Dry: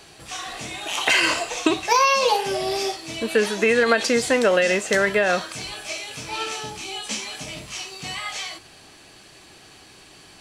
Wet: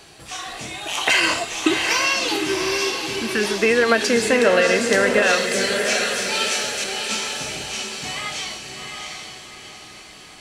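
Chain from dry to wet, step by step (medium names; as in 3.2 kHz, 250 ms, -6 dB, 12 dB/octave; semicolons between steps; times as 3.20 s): 1.46–3.43 s: time-frequency box 410–1100 Hz -12 dB; 5.22–6.84 s: tilt shelf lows -8.5 dB, about 1.1 kHz; echo that smears into a reverb 736 ms, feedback 42%, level -4 dB; trim +1 dB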